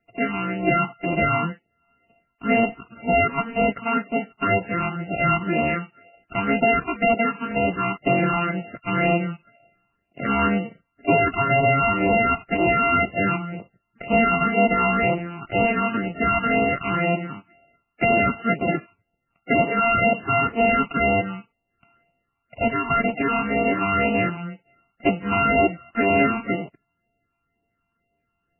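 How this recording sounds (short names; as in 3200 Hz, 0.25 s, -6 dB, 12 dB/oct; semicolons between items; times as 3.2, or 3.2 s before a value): a buzz of ramps at a fixed pitch in blocks of 64 samples; phasing stages 8, 2 Hz, lowest notch 510–1600 Hz; MP3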